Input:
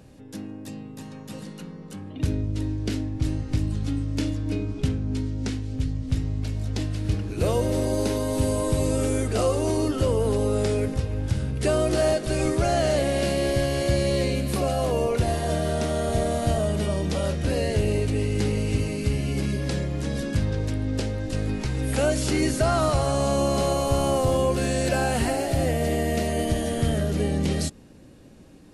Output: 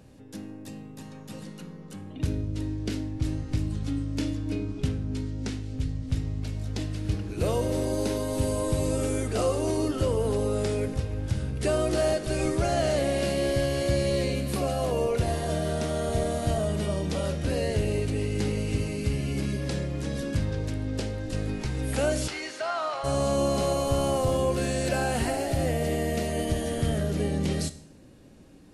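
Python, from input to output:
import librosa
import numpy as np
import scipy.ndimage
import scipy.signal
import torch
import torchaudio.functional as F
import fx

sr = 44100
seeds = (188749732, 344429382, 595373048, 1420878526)

y = fx.bandpass_edges(x, sr, low_hz=780.0, high_hz=fx.line((22.27, 5700.0), (23.03, 3300.0)), at=(22.27, 23.03), fade=0.02)
y = fx.rev_schroeder(y, sr, rt60_s=0.63, comb_ms=25, drr_db=13.5)
y = y * librosa.db_to_amplitude(-3.0)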